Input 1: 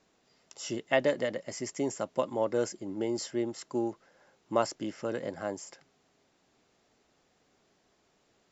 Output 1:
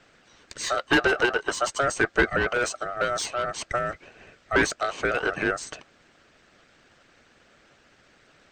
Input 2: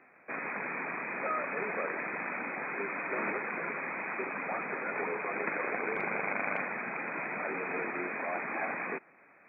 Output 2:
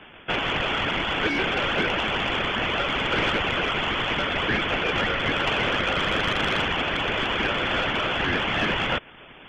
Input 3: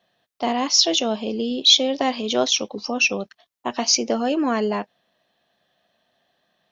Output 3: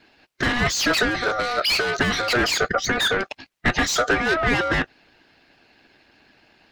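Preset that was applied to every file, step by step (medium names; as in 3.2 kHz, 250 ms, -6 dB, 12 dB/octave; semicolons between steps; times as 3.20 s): overdrive pedal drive 33 dB, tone 2 kHz, clips at -1 dBFS; ring modulator 970 Hz; harmonic-percussive split harmonic -9 dB; trim -3.5 dB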